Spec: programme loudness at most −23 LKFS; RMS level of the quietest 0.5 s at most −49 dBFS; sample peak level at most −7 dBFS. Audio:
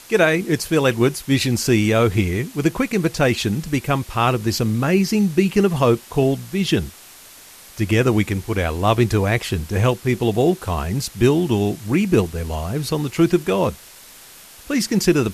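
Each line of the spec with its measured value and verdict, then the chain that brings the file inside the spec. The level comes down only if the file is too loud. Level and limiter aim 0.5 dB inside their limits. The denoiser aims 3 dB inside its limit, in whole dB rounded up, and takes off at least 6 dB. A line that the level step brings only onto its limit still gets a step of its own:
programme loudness −19.5 LKFS: out of spec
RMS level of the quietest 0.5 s −43 dBFS: out of spec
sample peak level −4.0 dBFS: out of spec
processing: broadband denoise 6 dB, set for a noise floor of −43 dBFS
level −4 dB

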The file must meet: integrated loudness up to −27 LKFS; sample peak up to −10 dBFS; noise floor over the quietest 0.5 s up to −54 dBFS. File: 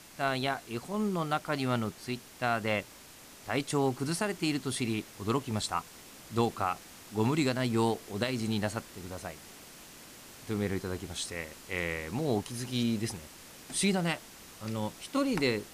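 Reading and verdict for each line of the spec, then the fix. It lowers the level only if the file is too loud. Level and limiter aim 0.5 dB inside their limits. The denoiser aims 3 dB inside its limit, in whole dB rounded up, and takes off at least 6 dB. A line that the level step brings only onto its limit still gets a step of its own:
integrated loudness −32.5 LKFS: in spec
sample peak −16.5 dBFS: in spec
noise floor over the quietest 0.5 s −52 dBFS: out of spec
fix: broadband denoise 6 dB, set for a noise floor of −52 dBFS

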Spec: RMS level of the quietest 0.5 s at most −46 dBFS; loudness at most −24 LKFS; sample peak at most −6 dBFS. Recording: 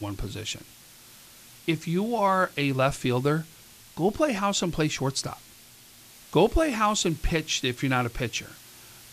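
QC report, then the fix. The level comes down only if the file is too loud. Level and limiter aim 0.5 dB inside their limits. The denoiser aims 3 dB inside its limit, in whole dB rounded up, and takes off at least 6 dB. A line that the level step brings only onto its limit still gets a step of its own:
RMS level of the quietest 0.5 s −51 dBFS: in spec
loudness −26.5 LKFS: in spec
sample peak −8.0 dBFS: in spec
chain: no processing needed

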